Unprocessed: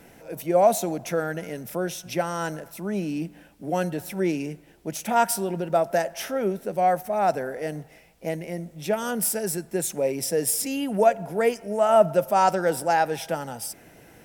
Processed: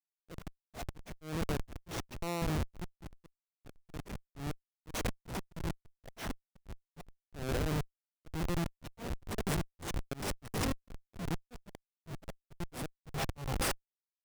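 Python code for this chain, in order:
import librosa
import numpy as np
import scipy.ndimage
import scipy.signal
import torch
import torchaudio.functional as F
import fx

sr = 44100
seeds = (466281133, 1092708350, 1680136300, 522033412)

y = fx.over_compress(x, sr, threshold_db=-32.0, ratio=-1.0)
y = fx.schmitt(y, sr, flips_db=-25.0)
y = fx.auto_swell(y, sr, attack_ms=203.0)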